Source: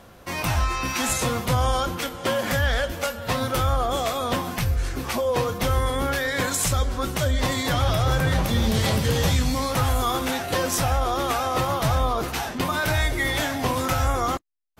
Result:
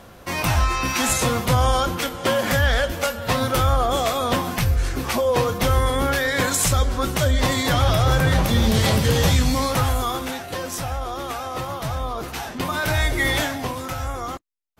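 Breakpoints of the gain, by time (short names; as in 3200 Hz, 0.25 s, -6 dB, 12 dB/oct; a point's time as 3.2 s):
9.65 s +3.5 dB
10.51 s -5 dB
11.99 s -5 dB
13.33 s +4 dB
13.78 s -5.5 dB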